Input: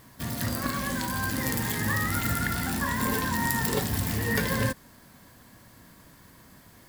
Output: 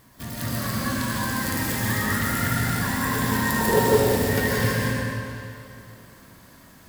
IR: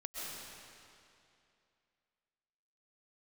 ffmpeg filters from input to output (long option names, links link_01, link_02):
-filter_complex "[0:a]asettb=1/sr,asplit=3[link_01][link_02][link_03];[link_01]atrim=end=3.494[link_04];[link_02]atrim=start=3.49:end=3.99,asetpts=PTS-STARTPTS,afade=type=in:duration=0.004:curve=qsin,afade=type=out:start_time=0.496:duration=0.004:curve=qsin,equalizer=frequency=470:width=1.1:gain=12.5[link_05];[link_03]atrim=start=3.986[link_06];[link_04][link_05]acrossfade=duration=0.004:curve1=hsin:curve2=qsin[link_07];[link_07][link_06]acrossfade=duration=0.004:curve1=qsin:curve2=hsin,bandreject=frequency=157.9:width_type=h:width=4,bandreject=frequency=315.8:width_type=h:width=4,bandreject=frequency=473.7:width_type=h:width=4,bandreject=frequency=631.6:width_type=h:width=4,bandreject=frequency=789.5:width_type=h:width=4,bandreject=frequency=947.4:width_type=h:width=4,bandreject=frequency=1105.3:width_type=h:width=4,bandreject=frequency=1263.2:width_type=h:width=4,bandreject=frequency=1421.1:width_type=h:width=4,bandreject=frequency=1579:width_type=h:width=4,bandreject=frequency=1736.9:width_type=h:width=4,bandreject=frequency=1894.8:width_type=h:width=4,bandreject=frequency=2052.7:width_type=h:width=4,bandreject=frequency=2210.6:width_type=h:width=4,bandreject=frequency=2368.5:width_type=h:width=4,bandreject=frequency=2526.4:width_type=h:width=4,bandreject=frequency=2684.3:width_type=h:width=4,bandreject=frequency=2842.2:width_type=h:width=4,bandreject=frequency=3000.1:width_type=h:width=4,bandreject=frequency=3158:width_type=h:width=4,bandreject=frequency=3315.9:width_type=h:width=4,bandreject=frequency=3473.8:width_type=h:width=4,bandreject=frequency=3631.7:width_type=h:width=4,bandreject=frequency=3789.6:width_type=h:width=4,bandreject=frequency=3947.5:width_type=h:width=4,bandreject=frequency=4105.4:width_type=h:width=4,bandreject=frequency=4263.3:width_type=h:width=4,bandreject=frequency=4421.2:width_type=h:width=4,bandreject=frequency=4579.1:width_type=h:width=4,bandreject=frequency=4737:width_type=h:width=4,bandreject=frequency=4894.9:width_type=h:width=4,bandreject=frequency=5052.8:width_type=h:width=4,bandreject=frequency=5210.7:width_type=h:width=4,bandreject=frequency=5368.6:width_type=h:width=4,bandreject=frequency=5526.5:width_type=h:width=4,bandreject=frequency=5684.4:width_type=h:width=4[link_08];[1:a]atrim=start_sample=2205[link_09];[link_08][link_09]afir=irnorm=-1:irlink=0,volume=3.5dB"